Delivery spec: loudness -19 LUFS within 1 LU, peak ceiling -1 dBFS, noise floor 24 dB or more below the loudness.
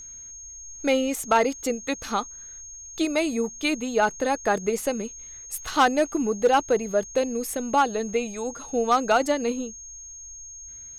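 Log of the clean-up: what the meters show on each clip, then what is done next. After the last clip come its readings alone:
clipped samples 0.3%; clipping level -12.0 dBFS; steady tone 6.5 kHz; tone level -39 dBFS; loudness -25.0 LUFS; peak level -12.0 dBFS; loudness target -19.0 LUFS
-> clip repair -12 dBFS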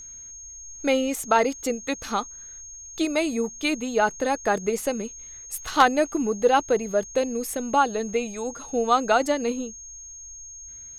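clipped samples 0.0%; steady tone 6.5 kHz; tone level -39 dBFS
-> band-stop 6.5 kHz, Q 30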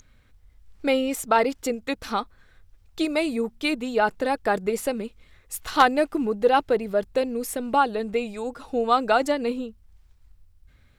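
steady tone not found; loudness -24.5 LUFS; peak level -3.0 dBFS; loudness target -19.0 LUFS
-> trim +5.5 dB; peak limiter -1 dBFS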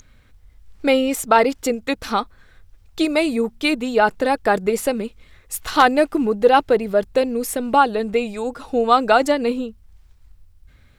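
loudness -19.0 LUFS; peak level -1.0 dBFS; noise floor -52 dBFS

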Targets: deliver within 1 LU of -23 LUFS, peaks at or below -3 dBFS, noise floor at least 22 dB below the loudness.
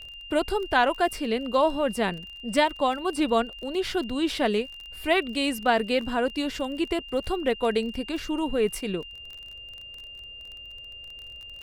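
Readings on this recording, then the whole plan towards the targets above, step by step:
tick rate 28 per s; steady tone 2.8 kHz; tone level -40 dBFS; loudness -26.5 LUFS; peak level -8.5 dBFS; loudness target -23.0 LUFS
-> de-click; band-stop 2.8 kHz, Q 30; trim +3.5 dB

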